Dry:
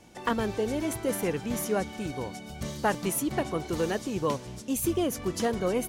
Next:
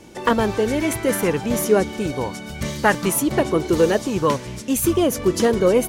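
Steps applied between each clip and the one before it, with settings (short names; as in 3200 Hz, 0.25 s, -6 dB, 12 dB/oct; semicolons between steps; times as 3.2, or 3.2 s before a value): notch 730 Hz, Q 12; LFO bell 0.55 Hz 360–2200 Hz +6 dB; gain +8.5 dB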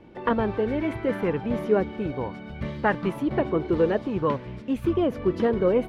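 air absorption 420 m; gain -4 dB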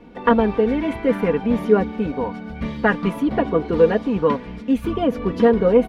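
comb 4.2 ms, depth 71%; gain +4 dB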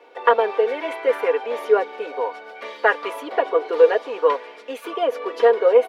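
steep high-pass 420 Hz 36 dB/oct; gain +2 dB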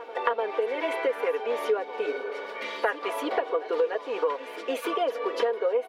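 compressor 5:1, threshold -28 dBFS, peak gain reduction 18 dB; pre-echo 0.296 s -14.5 dB; spectral repair 2.08–2.71, 400–1800 Hz both; gain +3.5 dB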